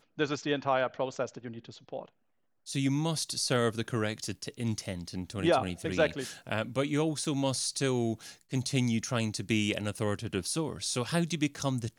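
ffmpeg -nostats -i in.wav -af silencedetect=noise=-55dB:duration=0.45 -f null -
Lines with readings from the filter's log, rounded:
silence_start: 2.09
silence_end: 2.66 | silence_duration: 0.57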